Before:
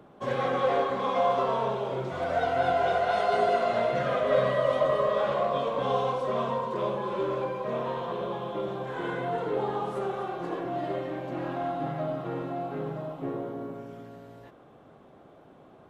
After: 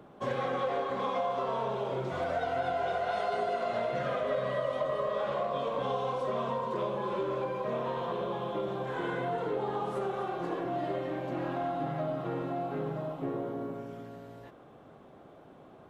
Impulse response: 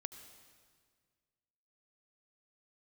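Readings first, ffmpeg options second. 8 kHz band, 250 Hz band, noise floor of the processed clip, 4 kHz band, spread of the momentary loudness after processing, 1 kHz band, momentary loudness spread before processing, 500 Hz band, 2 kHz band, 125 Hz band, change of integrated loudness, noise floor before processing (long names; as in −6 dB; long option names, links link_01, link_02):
can't be measured, −2.5 dB, −54 dBFS, −4.5 dB, 4 LU, −4.5 dB, 9 LU, −4.5 dB, −4.5 dB, −2.5 dB, −4.5 dB, −54 dBFS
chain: -af "acompressor=threshold=-29dB:ratio=4"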